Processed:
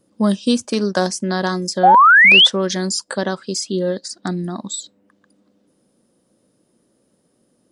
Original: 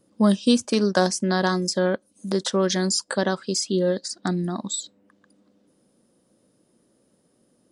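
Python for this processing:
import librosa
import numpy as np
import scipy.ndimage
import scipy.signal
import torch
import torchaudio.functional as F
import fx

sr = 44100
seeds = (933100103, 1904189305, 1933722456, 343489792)

y = fx.spec_paint(x, sr, seeds[0], shape='rise', start_s=1.83, length_s=0.64, low_hz=700.0, high_hz=3600.0, level_db=-10.0)
y = y * 10.0 ** (1.5 / 20.0)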